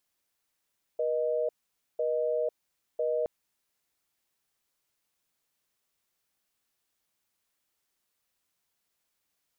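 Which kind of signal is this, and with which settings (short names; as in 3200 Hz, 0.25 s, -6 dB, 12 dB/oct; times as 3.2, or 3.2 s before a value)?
call progress tone busy tone, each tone -28.5 dBFS 2.27 s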